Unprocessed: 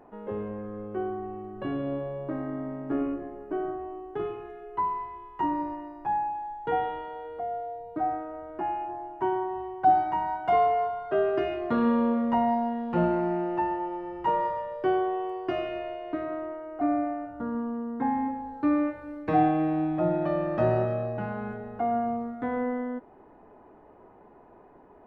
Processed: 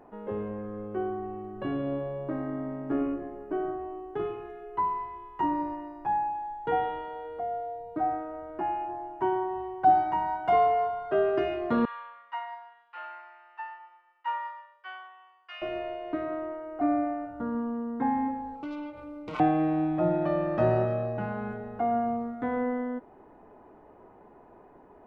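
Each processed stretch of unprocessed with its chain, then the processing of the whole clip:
11.85–15.62 s: high-pass 1.2 kHz 24 dB/octave + distance through air 190 m + three bands expanded up and down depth 100%
18.55–19.40 s: self-modulated delay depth 0.71 ms + Butterworth band-stop 1.7 kHz, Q 3.4 + compression 2.5:1, threshold -39 dBFS
whole clip: none

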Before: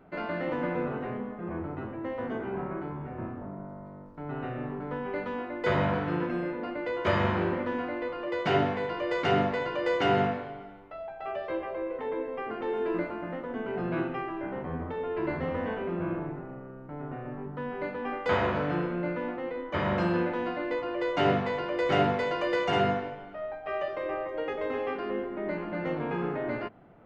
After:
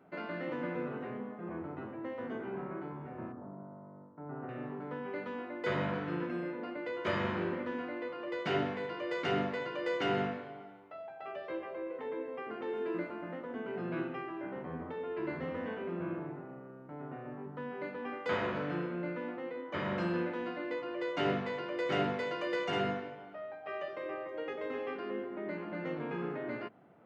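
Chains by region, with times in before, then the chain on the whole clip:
3.32–4.49 s: Chebyshev band-pass 100–1300 Hz + distance through air 310 m
whole clip: high-pass 140 Hz 12 dB/octave; dynamic bell 780 Hz, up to -5 dB, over -40 dBFS, Q 1.6; trim -5 dB

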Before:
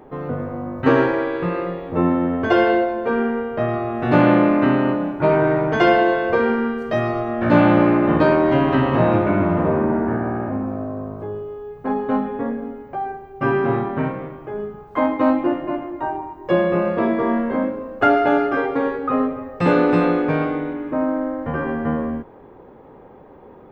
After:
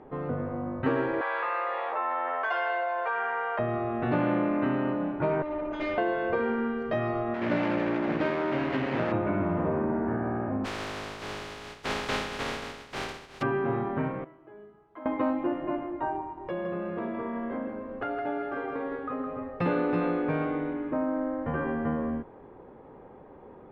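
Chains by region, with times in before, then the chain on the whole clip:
1.21–3.59 s: high-pass 760 Hz 24 dB/octave + peaking EQ 3.6 kHz -4.5 dB 1.5 oct + level flattener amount 70%
5.42–5.98 s: comb 6.8 ms, depth 55% + robot voice 302 Hz + valve stage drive 21 dB, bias 0.6
7.34–9.12 s: comb filter that takes the minimum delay 0.4 ms + high-pass 240 Hz 6 dB/octave
10.64–13.41 s: spectral contrast reduction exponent 0.15 + peaking EQ 400 Hz +4 dB 0.33 oct
14.24–15.06 s: high-pass 110 Hz 6 dB/octave + feedback comb 330 Hz, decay 0.17 s, mix 90% + compression 2:1, threshold -38 dBFS
16.21–19.37 s: compression 3:1, threshold -28 dBFS + delay 163 ms -6.5 dB
whole clip: low-pass 3.5 kHz 12 dB/octave; compression 2.5:1, threshold -21 dBFS; trim -5 dB

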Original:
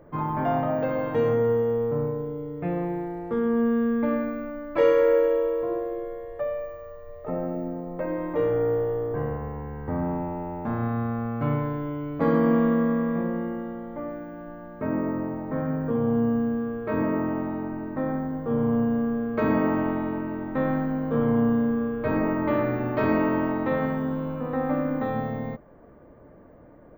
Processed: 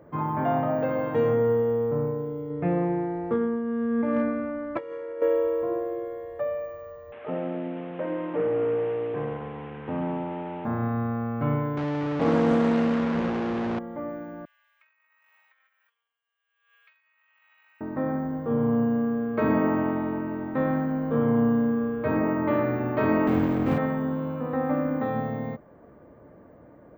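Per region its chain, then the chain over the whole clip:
2.50–5.22 s: compressor with a negative ratio -25 dBFS, ratio -0.5 + hard clipper -16.5 dBFS + distance through air 90 m
7.12–10.65 s: one-bit delta coder 16 kbps, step -36 dBFS + high-pass 160 Hz + distance through air 250 m
11.77–13.79 s: one-bit delta coder 32 kbps, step -20.5 dBFS + low-pass 1.3 kHz 6 dB/octave + loudspeaker Doppler distortion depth 0.31 ms
14.45–17.81 s: compressor with a negative ratio -31 dBFS, ratio -0.5 + ladder high-pass 2.3 kHz, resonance 45%
23.27–23.78 s: tone controls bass +8 dB, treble +11 dB + sliding maximum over 33 samples
whole clip: high-pass 66 Hz; dynamic bell 5.1 kHz, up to -6 dB, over -54 dBFS, Q 1.2

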